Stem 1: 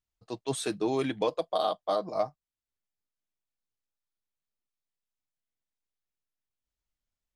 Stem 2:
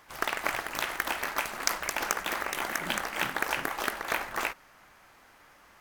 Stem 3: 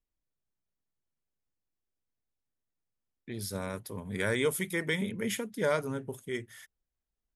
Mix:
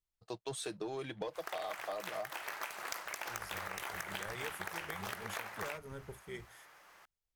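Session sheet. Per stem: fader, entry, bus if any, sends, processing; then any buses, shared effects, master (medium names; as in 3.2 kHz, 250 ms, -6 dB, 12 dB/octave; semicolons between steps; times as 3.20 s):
-3.5 dB, 0.00 s, no send, waveshaping leveller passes 1
-2.5 dB, 1.25 s, no send, high-pass 280 Hz 6 dB/octave; saturation -14 dBFS, distortion -17 dB
-8.5 dB, 0.00 s, no send, octave divider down 1 oct, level -5 dB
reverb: none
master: peaking EQ 250 Hz -12 dB 0.38 oct; compression, threshold -38 dBFS, peak gain reduction 13 dB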